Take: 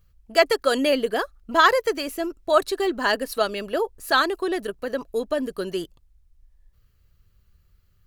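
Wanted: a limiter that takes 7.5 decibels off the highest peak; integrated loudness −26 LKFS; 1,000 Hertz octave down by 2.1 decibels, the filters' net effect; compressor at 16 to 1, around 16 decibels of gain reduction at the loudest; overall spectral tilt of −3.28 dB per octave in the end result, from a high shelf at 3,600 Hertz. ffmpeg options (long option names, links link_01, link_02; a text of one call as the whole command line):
ffmpeg -i in.wav -af "equalizer=frequency=1000:width_type=o:gain=-3.5,highshelf=frequency=3600:gain=6,acompressor=threshold=-28dB:ratio=16,volume=9dB,alimiter=limit=-15dB:level=0:latency=1" out.wav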